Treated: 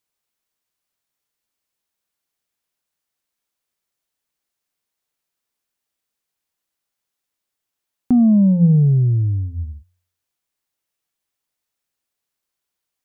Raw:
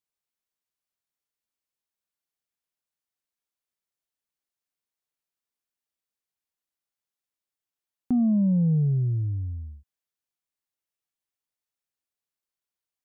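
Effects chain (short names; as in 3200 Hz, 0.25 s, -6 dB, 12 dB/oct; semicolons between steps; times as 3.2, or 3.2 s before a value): de-hum 89.92 Hz, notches 2; gain +9 dB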